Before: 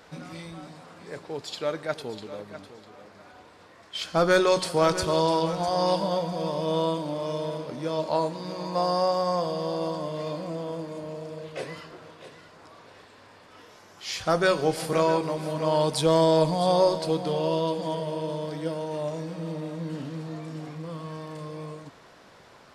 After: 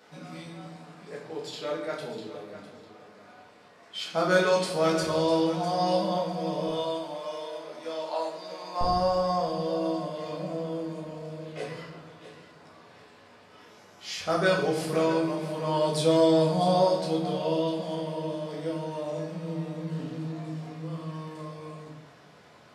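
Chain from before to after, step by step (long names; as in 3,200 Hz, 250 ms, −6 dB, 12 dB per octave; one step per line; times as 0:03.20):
high-pass filter 140 Hz 12 dB per octave, from 0:06.68 560 Hz, from 0:08.81 82 Hz
convolution reverb RT60 0.75 s, pre-delay 5 ms, DRR −3.5 dB
level −7 dB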